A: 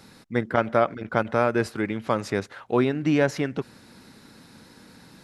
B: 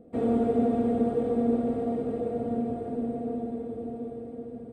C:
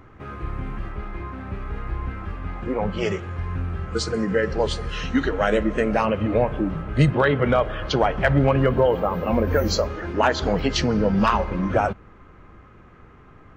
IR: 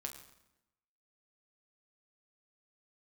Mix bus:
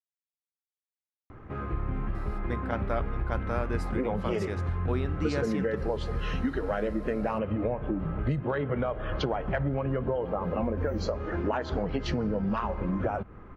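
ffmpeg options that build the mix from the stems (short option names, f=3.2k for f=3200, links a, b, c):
-filter_complex "[0:a]adelay=2150,volume=-12.5dB,asplit=2[a][b];[b]volume=-9dB[c];[2:a]lowpass=f=1.3k:p=1,acompressor=threshold=-27dB:ratio=10,adelay=1300,volume=1.5dB[d];[3:a]atrim=start_sample=2205[e];[c][e]afir=irnorm=-1:irlink=0[f];[a][d][f]amix=inputs=3:normalize=0"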